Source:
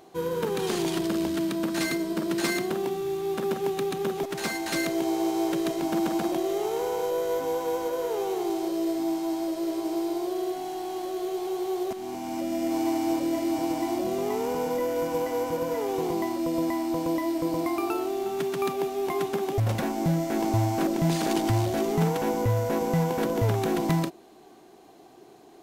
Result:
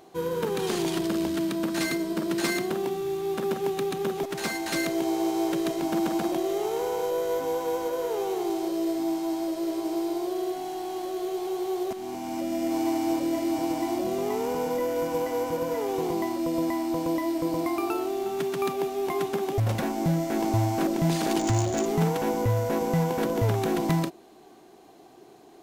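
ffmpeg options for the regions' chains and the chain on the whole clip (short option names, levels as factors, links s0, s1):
-filter_complex "[0:a]asettb=1/sr,asplit=3[s0][s1][s2];[s0]atrim=end=21.394[s3];[s1]atrim=start=21.39:end=21.86,asetpts=PTS-STARTPTS,afade=t=in:d=0.004:c=qsin,afade=t=out:st=0.466:d=0.004:c=qsin,lowpass=f=6900:t=q:w=16,adynamicsmooth=sensitivity=3.5:basefreq=2100[s4];[s2]atrim=start=21.856[s5];[s3][s4]acrossfade=d=0.004:c1=hsin:c2=qsin[s6];[s6][s5]acrossfade=d=0.004:c1=qsin:c2=hsin"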